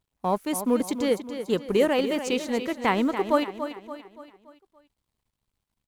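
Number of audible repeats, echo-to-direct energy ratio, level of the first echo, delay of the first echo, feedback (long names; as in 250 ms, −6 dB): 4, −9.0 dB, −10.0 dB, 286 ms, 46%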